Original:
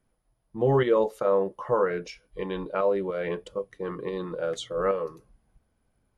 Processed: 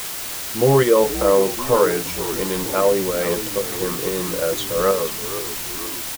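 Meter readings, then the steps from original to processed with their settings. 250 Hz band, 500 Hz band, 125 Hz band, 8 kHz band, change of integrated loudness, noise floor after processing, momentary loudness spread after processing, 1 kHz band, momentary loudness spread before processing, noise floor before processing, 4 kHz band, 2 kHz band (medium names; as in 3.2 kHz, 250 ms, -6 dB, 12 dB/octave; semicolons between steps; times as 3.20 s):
+8.5 dB, +7.5 dB, +7.5 dB, no reading, +8.0 dB, -29 dBFS, 9 LU, +7.5 dB, 12 LU, -74 dBFS, +16.0 dB, +10.0 dB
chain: word length cut 6-bit, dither triangular; frequency-shifting echo 476 ms, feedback 59%, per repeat -74 Hz, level -12.5 dB; trim +7 dB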